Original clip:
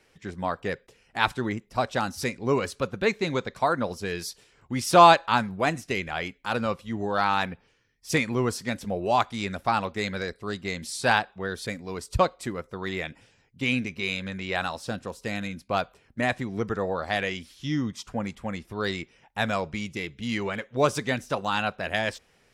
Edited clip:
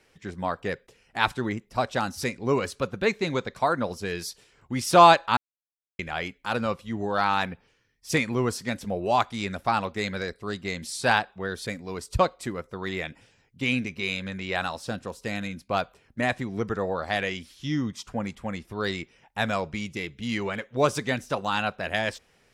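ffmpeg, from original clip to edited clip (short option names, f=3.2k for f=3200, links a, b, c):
-filter_complex "[0:a]asplit=3[a][b][c];[a]atrim=end=5.37,asetpts=PTS-STARTPTS,afade=t=out:st=5.366:d=0.004:c=hsin[d];[b]atrim=start=5.37:end=5.99,asetpts=PTS-STARTPTS,volume=0[e];[c]atrim=start=5.99,asetpts=PTS-STARTPTS,afade=t=in:d=0.004:c=hsin[f];[d][e][f]concat=n=3:v=0:a=1"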